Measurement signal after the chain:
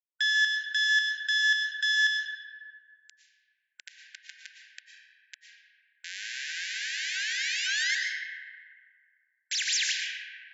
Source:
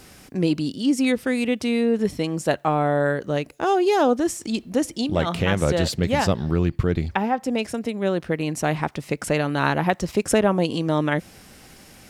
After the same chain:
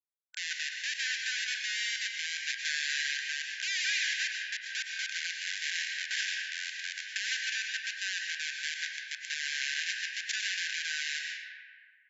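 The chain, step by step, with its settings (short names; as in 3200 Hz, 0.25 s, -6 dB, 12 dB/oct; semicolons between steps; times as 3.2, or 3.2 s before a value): half-wave gain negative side -12 dB; bell 3900 Hz -10 dB 1.6 oct; Schmitt trigger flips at -31.5 dBFS; brick-wall FIR band-pass 1500–7500 Hz; digital reverb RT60 2.5 s, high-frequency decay 0.4×, pre-delay 75 ms, DRR -0.5 dB; gain +4 dB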